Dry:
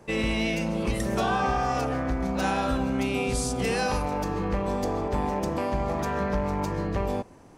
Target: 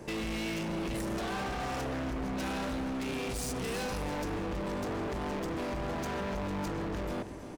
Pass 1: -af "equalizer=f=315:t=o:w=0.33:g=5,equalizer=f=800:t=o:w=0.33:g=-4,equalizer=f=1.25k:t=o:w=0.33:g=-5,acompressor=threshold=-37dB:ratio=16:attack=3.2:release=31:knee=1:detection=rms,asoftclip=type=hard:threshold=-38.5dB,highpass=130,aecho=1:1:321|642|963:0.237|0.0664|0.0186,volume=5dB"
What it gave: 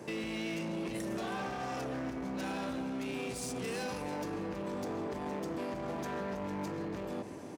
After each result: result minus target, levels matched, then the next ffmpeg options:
compressor: peak gain reduction +7.5 dB; 125 Hz band -2.5 dB
-af "equalizer=f=315:t=o:w=0.33:g=5,equalizer=f=800:t=o:w=0.33:g=-4,equalizer=f=1.25k:t=o:w=0.33:g=-5,acompressor=threshold=-29dB:ratio=16:attack=3.2:release=31:knee=1:detection=rms,asoftclip=type=hard:threshold=-38.5dB,highpass=130,aecho=1:1:321|642|963:0.237|0.0664|0.0186,volume=5dB"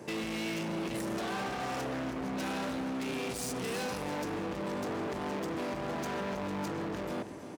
125 Hz band -3.0 dB
-af "equalizer=f=315:t=o:w=0.33:g=5,equalizer=f=800:t=o:w=0.33:g=-4,equalizer=f=1.25k:t=o:w=0.33:g=-5,acompressor=threshold=-29dB:ratio=16:attack=3.2:release=31:knee=1:detection=rms,asoftclip=type=hard:threshold=-38.5dB,aecho=1:1:321|642|963:0.237|0.0664|0.0186,volume=5dB"

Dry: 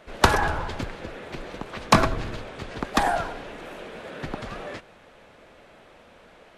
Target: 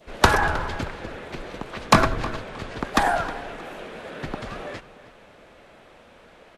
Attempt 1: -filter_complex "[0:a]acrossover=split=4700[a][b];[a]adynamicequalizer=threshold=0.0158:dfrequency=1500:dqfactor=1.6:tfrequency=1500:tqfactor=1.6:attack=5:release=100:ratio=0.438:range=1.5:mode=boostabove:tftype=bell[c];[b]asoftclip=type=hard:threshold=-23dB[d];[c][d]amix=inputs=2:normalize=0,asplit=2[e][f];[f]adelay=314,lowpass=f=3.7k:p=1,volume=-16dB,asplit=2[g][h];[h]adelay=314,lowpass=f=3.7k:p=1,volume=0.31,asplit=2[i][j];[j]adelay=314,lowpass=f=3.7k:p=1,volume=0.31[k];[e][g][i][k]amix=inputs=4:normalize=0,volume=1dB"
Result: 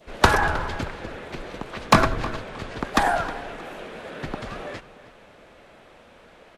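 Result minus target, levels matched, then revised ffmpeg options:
hard clip: distortion +27 dB
-filter_complex "[0:a]acrossover=split=4700[a][b];[a]adynamicequalizer=threshold=0.0158:dfrequency=1500:dqfactor=1.6:tfrequency=1500:tqfactor=1.6:attack=5:release=100:ratio=0.438:range=1.5:mode=boostabove:tftype=bell[c];[b]asoftclip=type=hard:threshold=-11.5dB[d];[c][d]amix=inputs=2:normalize=0,asplit=2[e][f];[f]adelay=314,lowpass=f=3.7k:p=1,volume=-16dB,asplit=2[g][h];[h]adelay=314,lowpass=f=3.7k:p=1,volume=0.31,asplit=2[i][j];[j]adelay=314,lowpass=f=3.7k:p=1,volume=0.31[k];[e][g][i][k]amix=inputs=4:normalize=0,volume=1dB"

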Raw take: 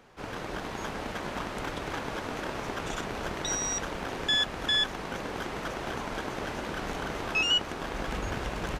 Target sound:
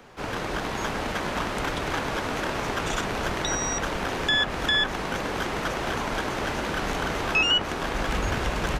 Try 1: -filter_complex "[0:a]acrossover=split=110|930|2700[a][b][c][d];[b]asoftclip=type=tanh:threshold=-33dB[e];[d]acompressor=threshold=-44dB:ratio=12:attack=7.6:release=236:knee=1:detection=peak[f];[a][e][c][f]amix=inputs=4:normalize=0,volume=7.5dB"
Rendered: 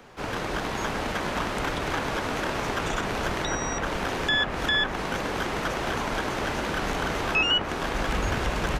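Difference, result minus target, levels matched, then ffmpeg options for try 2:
compressor: peak gain reduction +6.5 dB
-filter_complex "[0:a]acrossover=split=110|930|2700[a][b][c][d];[b]asoftclip=type=tanh:threshold=-33dB[e];[d]acompressor=threshold=-37dB:ratio=12:attack=7.6:release=236:knee=1:detection=peak[f];[a][e][c][f]amix=inputs=4:normalize=0,volume=7.5dB"

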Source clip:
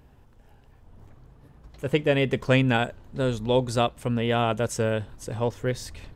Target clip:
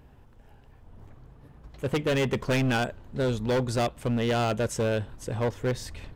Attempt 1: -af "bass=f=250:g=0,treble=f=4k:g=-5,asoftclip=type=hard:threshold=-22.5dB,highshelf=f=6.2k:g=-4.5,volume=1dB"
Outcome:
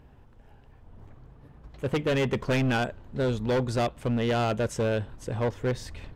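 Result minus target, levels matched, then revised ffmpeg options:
8000 Hz band -4.0 dB
-af "bass=f=250:g=0,treble=f=4k:g=-5,asoftclip=type=hard:threshold=-22.5dB,highshelf=f=6.2k:g=2.5,volume=1dB"

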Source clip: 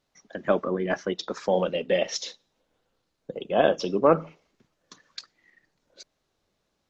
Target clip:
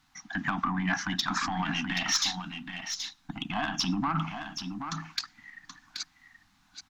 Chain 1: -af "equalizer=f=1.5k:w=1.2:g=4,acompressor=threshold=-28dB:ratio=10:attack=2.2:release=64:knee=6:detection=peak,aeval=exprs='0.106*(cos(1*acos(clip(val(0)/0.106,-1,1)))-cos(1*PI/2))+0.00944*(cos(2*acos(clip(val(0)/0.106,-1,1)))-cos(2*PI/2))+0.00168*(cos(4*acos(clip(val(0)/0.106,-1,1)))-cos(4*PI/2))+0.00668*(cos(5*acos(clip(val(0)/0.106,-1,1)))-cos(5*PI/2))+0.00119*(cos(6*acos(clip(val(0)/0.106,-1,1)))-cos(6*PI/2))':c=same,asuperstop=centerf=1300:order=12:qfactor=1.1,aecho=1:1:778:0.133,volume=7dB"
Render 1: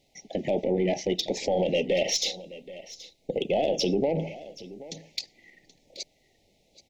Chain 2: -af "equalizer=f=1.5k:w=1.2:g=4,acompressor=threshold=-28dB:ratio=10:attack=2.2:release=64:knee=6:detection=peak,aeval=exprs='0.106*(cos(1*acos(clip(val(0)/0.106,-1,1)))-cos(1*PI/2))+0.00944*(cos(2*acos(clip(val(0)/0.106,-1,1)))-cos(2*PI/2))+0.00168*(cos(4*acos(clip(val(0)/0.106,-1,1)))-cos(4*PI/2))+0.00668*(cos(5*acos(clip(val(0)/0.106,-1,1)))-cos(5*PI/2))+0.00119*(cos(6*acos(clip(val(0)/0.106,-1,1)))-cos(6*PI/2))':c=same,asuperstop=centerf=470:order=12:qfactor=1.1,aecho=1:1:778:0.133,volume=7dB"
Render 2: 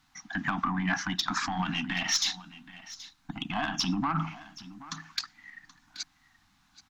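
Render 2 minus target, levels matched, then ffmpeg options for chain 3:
echo-to-direct -9.5 dB
-af "equalizer=f=1.5k:w=1.2:g=4,acompressor=threshold=-28dB:ratio=10:attack=2.2:release=64:knee=6:detection=peak,aeval=exprs='0.106*(cos(1*acos(clip(val(0)/0.106,-1,1)))-cos(1*PI/2))+0.00944*(cos(2*acos(clip(val(0)/0.106,-1,1)))-cos(2*PI/2))+0.00168*(cos(4*acos(clip(val(0)/0.106,-1,1)))-cos(4*PI/2))+0.00668*(cos(5*acos(clip(val(0)/0.106,-1,1)))-cos(5*PI/2))+0.00119*(cos(6*acos(clip(val(0)/0.106,-1,1)))-cos(6*PI/2))':c=same,asuperstop=centerf=470:order=12:qfactor=1.1,aecho=1:1:778:0.398,volume=7dB"

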